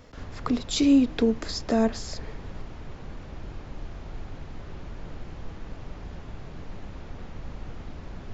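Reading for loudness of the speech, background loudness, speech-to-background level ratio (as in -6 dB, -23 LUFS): -24.0 LUFS, -42.5 LUFS, 18.5 dB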